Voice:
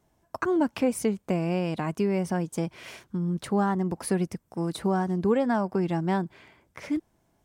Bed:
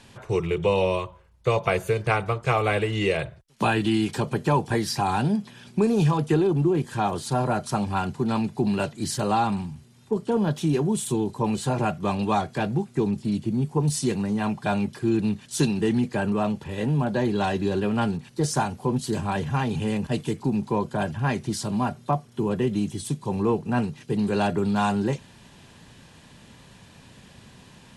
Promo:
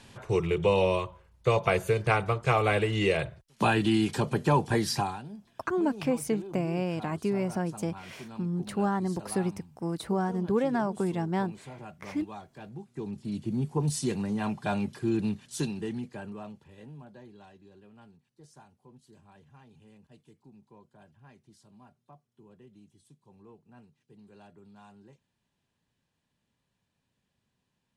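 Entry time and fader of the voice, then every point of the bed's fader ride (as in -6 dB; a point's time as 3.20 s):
5.25 s, -3.0 dB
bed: 4.99 s -2 dB
5.23 s -20 dB
12.59 s -20 dB
13.54 s -5 dB
15.27 s -5 dB
17.62 s -30.5 dB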